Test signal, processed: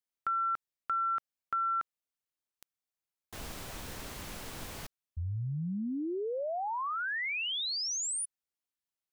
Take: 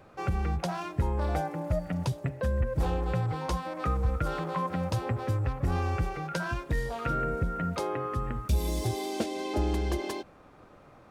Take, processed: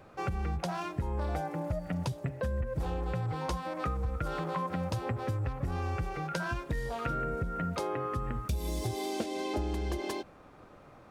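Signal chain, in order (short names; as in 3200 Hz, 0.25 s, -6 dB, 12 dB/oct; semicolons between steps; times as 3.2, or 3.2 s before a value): compressor, threshold -29 dBFS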